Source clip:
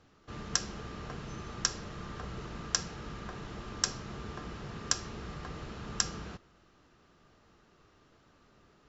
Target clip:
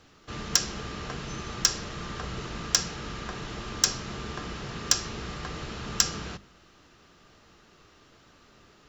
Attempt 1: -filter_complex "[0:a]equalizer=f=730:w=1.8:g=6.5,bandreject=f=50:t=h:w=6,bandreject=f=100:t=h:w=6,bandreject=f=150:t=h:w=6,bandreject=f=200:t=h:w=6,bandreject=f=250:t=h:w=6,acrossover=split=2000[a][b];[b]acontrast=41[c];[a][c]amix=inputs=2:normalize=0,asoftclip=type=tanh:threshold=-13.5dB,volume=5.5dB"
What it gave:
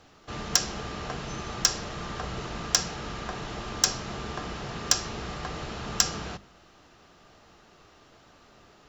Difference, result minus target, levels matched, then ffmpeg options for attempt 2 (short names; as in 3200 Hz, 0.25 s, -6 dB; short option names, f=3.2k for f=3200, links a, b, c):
1000 Hz band +2.5 dB
-filter_complex "[0:a]bandreject=f=50:t=h:w=6,bandreject=f=100:t=h:w=6,bandreject=f=150:t=h:w=6,bandreject=f=200:t=h:w=6,bandreject=f=250:t=h:w=6,acrossover=split=2000[a][b];[b]acontrast=41[c];[a][c]amix=inputs=2:normalize=0,asoftclip=type=tanh:threshold=-13.5dB,volume=5.5dB"